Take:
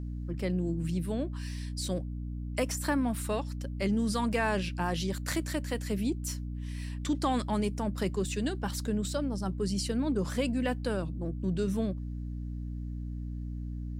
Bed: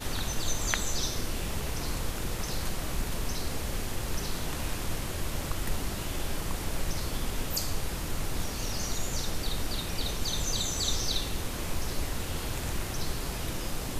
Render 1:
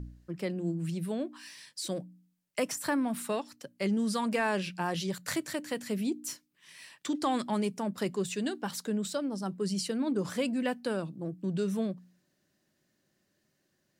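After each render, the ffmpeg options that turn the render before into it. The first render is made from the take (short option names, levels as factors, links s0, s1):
-af "bandreject=f=60:t=h:w=4,bandreject=f=120:t=h:w=4,bandreject=f=180:t=h:w=4,bandreject=f=240:t=h:w=4,bandreject=f=300:t=h:w=4"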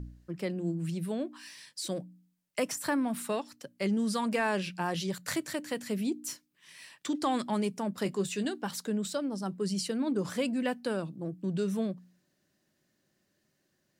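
-filter_complex "[0:a]asettb=1/sr,asplit=3[s0][s1][s2];[s0]atrim=end=8.034[s3];[s1]atrim=start=8.03:end=8.45,asetpts=PTS-STARTPTS,afade=t=in:d=0.004:c=qsin,afade=t=out:st=0.416:d=0.004:c=qsin,asplit=2[s4][s5];[s5]adelay=20,volume=0.335[s6];[s4][s6]amix=inputs=2:normalize=0,atrim=end_sample=18522[s7];[s2]atrim=start=8.446[s8];[s3][s7]acrossfade=d=0.004:c1=hsin:c2=qsin[s9];[s9][s8]acrossfade=d=0.004:c1=qsin:c2=hsin"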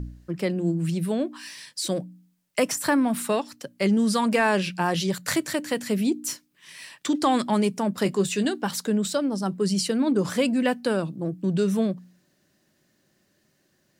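-af "volume=2.51"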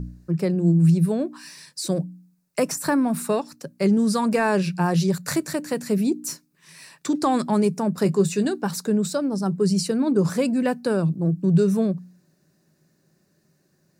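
-af "equalizer=f=160:t=o:w=0.33:g=12,equalizer=f=400:t=o:w=0.33:g=4,equalizer=f=2000:t=o:w=0.33:g=-5,equalizer=f=3150:t=o:w=0.33:g=-12"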